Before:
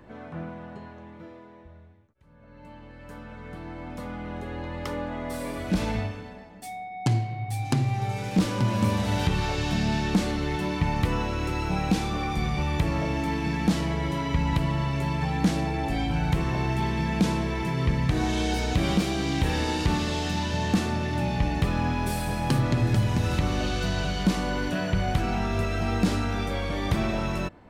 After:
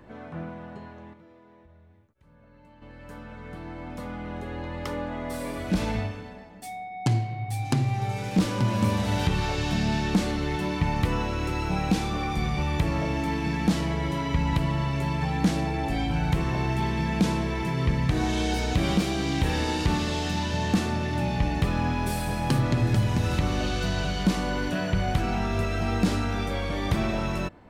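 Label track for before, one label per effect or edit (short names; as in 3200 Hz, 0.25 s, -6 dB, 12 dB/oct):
1.130000	2.820000	compressor 3:1, threshold -52 dBFS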